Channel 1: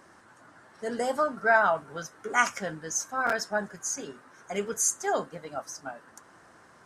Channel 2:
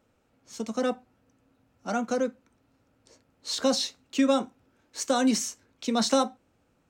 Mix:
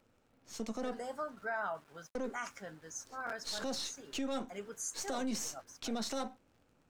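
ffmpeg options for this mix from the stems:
-filter_complex "[0:a]aeval=exprs='val(0)*gte(abs(val(0)),0.00501)':c=same,volume=-13.5dB[a];[1:a]aeval=exprs='if(lt(val(0),0),0.447*val(0),val(0))':c=same,acompressor=threshold=-29dB:ratio=4,volume=0dB,asplit=3[b][c][d];[b]atrim=end=1.48,asetpts=PTS-STARTPTS,afade=t=out:st=1.476:d=0.004:c=hsin[e];[c]atrim=start=1.48:end=2.15,asetpts=PTS-STARTPTS,volume=0[f];[d]atrim=start=2.15,asetpts=PTS-STARTPTS,afade=t=in:d=0.004:c=hsin[g];[e][f][g]concat=n=3:v=0:a=1[h];[a][h]amix=inputs=2:normalize=0,highshelf=f=9.2k:g=-3.5,alimiter=level_in=4dB:limit=-24dB:level=0:latency=1:release=27,volume=-4dB"

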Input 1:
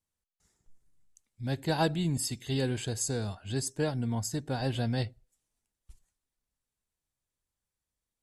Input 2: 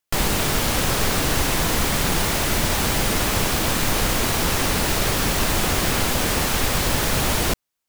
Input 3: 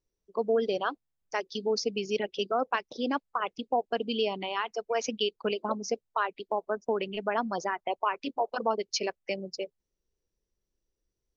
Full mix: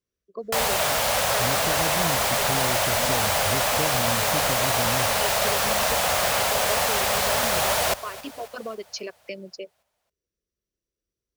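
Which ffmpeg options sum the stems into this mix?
-filter_complex "[0:a]lowpass=3.4k,dynaudnorm=f=250:g=3:m=12dB,volume=-1dB[a];[1:a]lowshelf=f=450:t=q:w=3:g=-9.5,adelay=400,volume=-1dB,asplit=2[b][c];[c]volume=-18dB[d];[2:a]volume=-1.5dB[e];[a][e]amix=inputs=2:normalize=0,asuperstop=centerf=850:order=4:qfactor=2.5,acompressor=threshold=-29dB:ratio=6,volume=0dB[f];[d]aecho=0:1:270|540|810|1080|1350|1620|1890|2160:1|0.55|0.303|0.166|0.0915|0.0503|0.0277|0.0152[g];[b][f][g]amix=inputs=3:normalize=0,highpass=52"

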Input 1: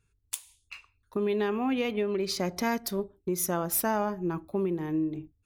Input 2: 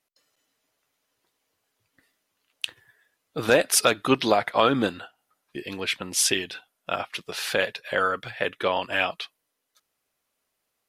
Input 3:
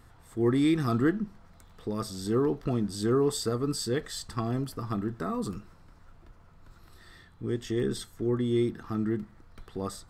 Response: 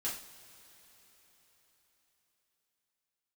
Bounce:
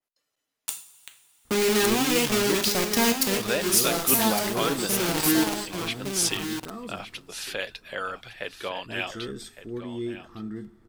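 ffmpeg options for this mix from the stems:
-filter_complex "[0:a]acrusher=bits=4:mix=0:aa=0.000001,adelay=350,volume=-0.5dB,asplit=3[a][b][c];[b]volume=-4dB[d];[c]volume=-5dB[e];[1:a]volume=-9dB,asplit=3[f][g][h];[g]volume=-13dB[i];[2:a]adelay=1450,volume=-8.5dB,asplit=3[j][k][l];[k]volume=-12dB[m];[l]volume=-22.5dB[n];[h]apad=whole_len=255873[o];[a][o]sidechaincompress=threshold=-34dB:ratio=8:attack=16:release=338[p];[3:a]atrim=start_sample=2205[q];[d][m]amix=inputs=2:normalize=0[r];[r][q]afir=irnorm=-1:irlink=0[s];[e][i][n]amix=inputs=3:normalize=0,aecho=0:1:1161:1[t];[p][f][j][s][t]amix=inputs=5:normalize=0,adynamicequalizer=threshold=0.00708:dfrequency=2500:dqfactor=0.7:tfrequency=2500:tqfactor=0.7:attack=5:release=100:ratio=0.375:range=3.5:mode=boostabove:tftype=highshelf"

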